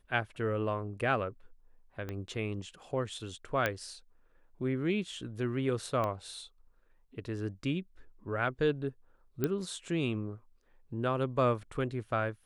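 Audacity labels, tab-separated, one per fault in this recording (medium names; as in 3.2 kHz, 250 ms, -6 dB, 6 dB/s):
2.090000	2.090000	pop -25 dBFS
3.660000	3.660000	pop -15 dBFS
6.040000	6.040000	pop -21 dBFS
9.440000	9.440000	pop -16 dBFS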